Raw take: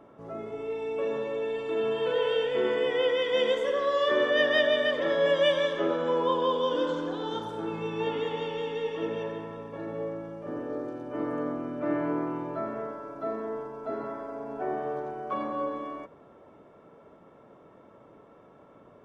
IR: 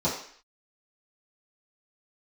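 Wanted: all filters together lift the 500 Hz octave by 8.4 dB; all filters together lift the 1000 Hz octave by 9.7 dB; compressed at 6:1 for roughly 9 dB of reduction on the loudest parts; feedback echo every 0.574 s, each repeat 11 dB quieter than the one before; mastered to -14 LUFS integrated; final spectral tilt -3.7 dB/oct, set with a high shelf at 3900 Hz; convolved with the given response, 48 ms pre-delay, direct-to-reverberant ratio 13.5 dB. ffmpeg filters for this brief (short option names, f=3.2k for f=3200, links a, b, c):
-filter_complex "[0:a]equalizer=f=500:t=o:g=7,equalizer=f=1k:t=o:g=9,highshelf=f=3.9k:g=6,acompressor=threshold=-22dB:ratio=6,aecho=1:1:574|1148|1722:0.282|0.0789|0.0221,asplit=2[a][b];[1:a]atrim=start_sample=2205,adelay=48[c];[b][c]afir=irnorm=-1:irlink=0,volume=-25dB[d];[a][d]amix=inputs=2:normalize=0,volume=12dB"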